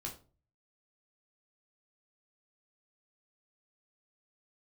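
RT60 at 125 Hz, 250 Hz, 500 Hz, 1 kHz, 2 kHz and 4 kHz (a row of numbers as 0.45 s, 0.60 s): 0.65 s, 0.45 s, 0.40 s, 0.35 s, 0.25 s, 0.25 s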